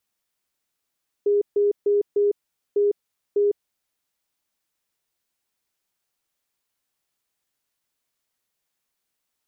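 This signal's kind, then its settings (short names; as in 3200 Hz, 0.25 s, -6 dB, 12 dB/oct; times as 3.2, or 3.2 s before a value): Morse "HEE" 8 wpm 409 Hz -16 dBFS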